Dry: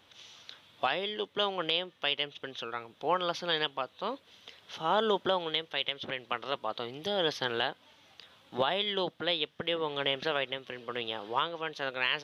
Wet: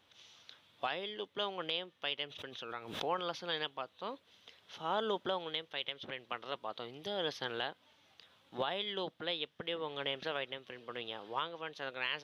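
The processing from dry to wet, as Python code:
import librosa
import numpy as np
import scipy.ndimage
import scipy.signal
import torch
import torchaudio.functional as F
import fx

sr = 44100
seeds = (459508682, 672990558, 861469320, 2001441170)

y = fx.pre_swell(x, sr, db_per_s=63.0, at=(2.27, 3.41))
y = y * 10.0 ** (-7.0 / 20.0)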